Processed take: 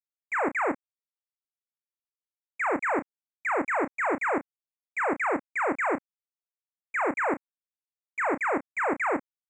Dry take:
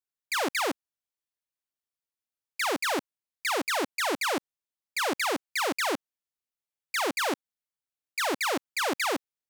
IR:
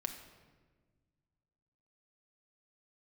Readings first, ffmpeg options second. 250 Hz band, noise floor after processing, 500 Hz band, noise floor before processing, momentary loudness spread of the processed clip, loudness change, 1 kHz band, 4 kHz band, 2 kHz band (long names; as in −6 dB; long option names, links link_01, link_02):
+2.5 dB, below −85 dBFS, +2.5 dB, below −85 dBFS, 7 LU, +0.5 dB, +2.5 dB, below −30 dB, +1.5 dB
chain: -filter_complex "[0:a]aresample=16000,aeval=exprs='val(0)*gte(abs(val(0)),0.01)':channel_layout=same,aresample=44100,asuperstop=centerf=4400:order=12:qfactor=0.76,asplit=2[link_01][link_02];[link_02]adelay=30,volume=-11dB[link_03];[link_01][link_03]amix=inputs=2:normalize=0,volume=2dB"